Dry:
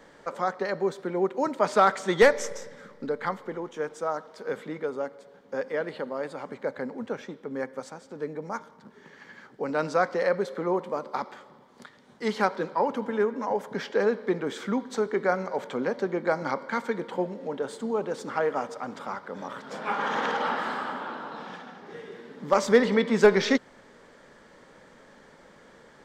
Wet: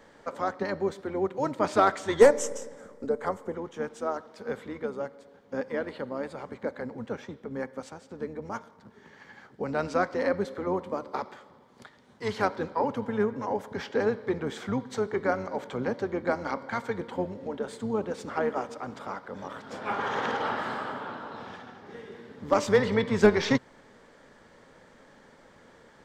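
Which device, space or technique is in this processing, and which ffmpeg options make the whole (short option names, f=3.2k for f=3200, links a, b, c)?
octave pedal: -filter_complex "[0:a]asplit=2[a][b];[b]asetrate=22050,aresample=44100,atempo=2,volume=-8dB[c];[a][c]amix=inputs=2:normalize=0,asettb=1/sr,asplit=3[d][e][f];[d]atrim=end=2.194[g];[e]atrim=start=2.19:end=3.55,asetpts=PTS-STARTPTS,afade=t=in:d=0.004:c=qsin,afade=t=out:st=1.356:d=0.004:c=qsin,equalizer=f=125:t=o:w=1:g=-4,equalizer=f=500:t=o:w=1:g=5,equalizer=f=2k:t=o:w=1:g=-4,equalizer=f=4k:t=o:w=1:g=-8,equalizer=f=8k:t=o:w=1:g=10[h];[f]atrim=start=3.546[i];[g][h]acrossfade=d=0.004:c1=hsin:c2=qsin[j];[j][i]acrossfade=d=0.004:c1=qsin:c2=hsin,volume=-2.5dB"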